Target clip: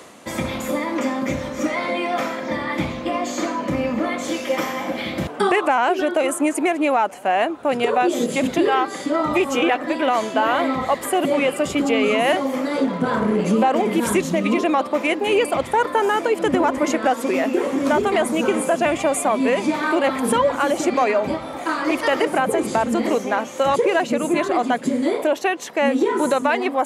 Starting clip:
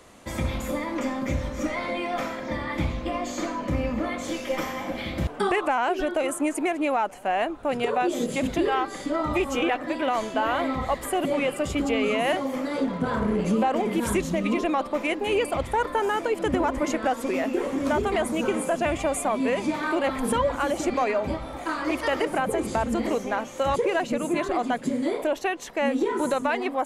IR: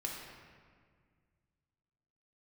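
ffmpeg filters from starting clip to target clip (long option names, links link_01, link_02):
-af "highpass=160,areverse,acompressor=mode=upward:threshold=-38dB:ratio=2.5,areverse,volume=6dB"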